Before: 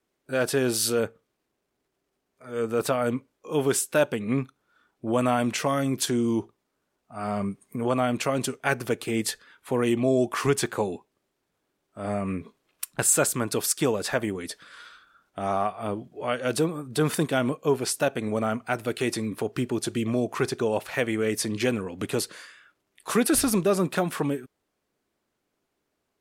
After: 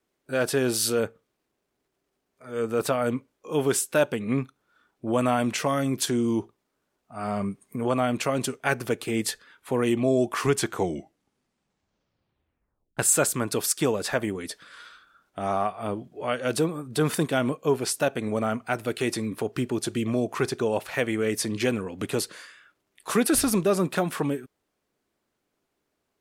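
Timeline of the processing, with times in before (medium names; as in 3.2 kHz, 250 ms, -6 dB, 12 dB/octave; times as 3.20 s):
10.56 s: tape stop 2.41 s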